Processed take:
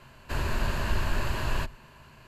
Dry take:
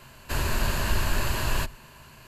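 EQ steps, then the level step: high shelf 5500 Hz -12 dB; -2.0 dB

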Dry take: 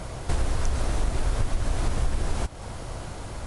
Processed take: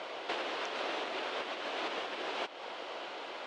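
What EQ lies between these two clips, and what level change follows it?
HPF 360 Hz 24 dB/oct; ladder low-pass 4600 Hz, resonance 25%; bell 2900 Hz +5 dB 0.71 oct; +4.5 dB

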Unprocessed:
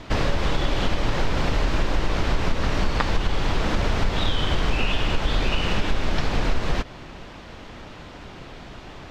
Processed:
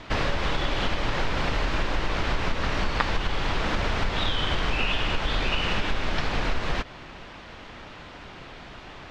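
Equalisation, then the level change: LPF 2500 Hz 6 dB/oct; tilt shelf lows -5 dB; 0.0 dB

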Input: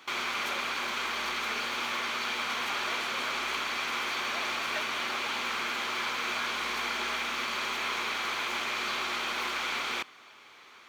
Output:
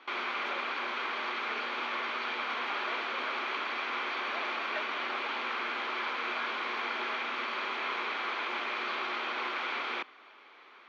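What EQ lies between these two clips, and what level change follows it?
HPF 260 Hz 24 dB/oct; air absorption 290 m; +1.0 dB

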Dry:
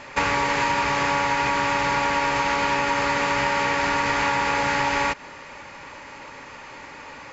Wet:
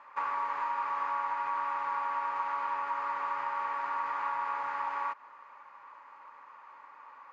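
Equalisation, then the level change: band-pass 1100 Hz, Q 5; -3.5 dB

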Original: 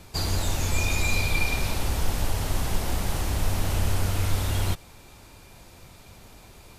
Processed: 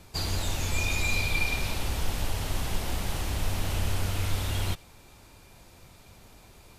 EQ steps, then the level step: dynamic EQ 3000 Hz, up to +4 dB, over -44 dBFS, Q 1.1; -4.0 dB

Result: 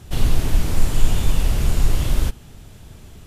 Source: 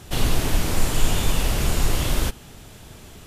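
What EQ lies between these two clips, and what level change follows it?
low shelf 190 Hz +9.5 dB; -4.5 dB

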